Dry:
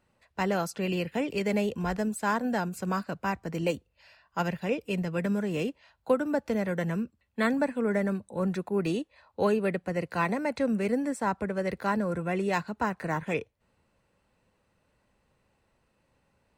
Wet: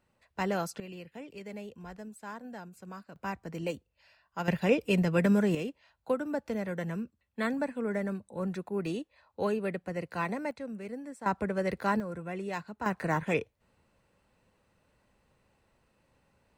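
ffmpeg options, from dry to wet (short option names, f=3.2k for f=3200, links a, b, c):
-af "asetnsamples=n=441:p=0,asendcmd='0.8 volume volume -15dB;3.16 volume volume -6dB;4.48 volume volume 4dB;5.55 volume volume -5dB;10.51 volume volume -12.5dB;11.26 volume volume -0.5dB;12 volume volume -8dB;12.86 volume volume 1dB',volume=-3dB"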